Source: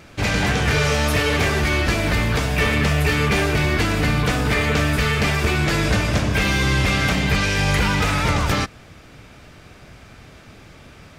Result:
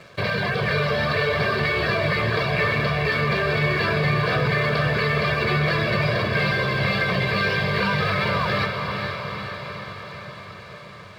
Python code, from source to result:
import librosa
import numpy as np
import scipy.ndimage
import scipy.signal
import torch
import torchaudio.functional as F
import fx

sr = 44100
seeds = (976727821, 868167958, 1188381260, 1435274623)

p1 = scipy.signal.sosfilt(scipy.signal.ellip(4, 1.0, 40, 4600.0, 'lowpass', fs=sr, output='sos'), x)
p2 = fx.dereverb_blind(p1, sr, rt60_s=0.76)
p3 = scipy.signal.sosfilt(scipy.signal.butter(4, 120.0, 'highpass', fs=sr, output='sos'), p2)
p4 = fx.peak_eq(p3, sr, hz=2800.0, db=-5.5, octaves=0.63)
p5 = p4 + 0.87 * np.pad(p4, (int(1.8 * sr / 1000.0), 0))[:len(p4)]
p6 = fx.over_compress(p5, sr, threshold_db=-27.0, ratio=-1.0)
p7 = p5 + (p6 * librosa.db_to_amplitude(2.5))
p8 = np.sign(p7) * np.maximum(np.abs(p7) - 10.0 ** (-41.5 / 20.0), 0.0)
p9 = fx.echo_diffused(p8, sr, ms=452, feedback_pct=65, wet_db=-5.0)
y = p9 * librosa.db_to_amplitude(-6.0)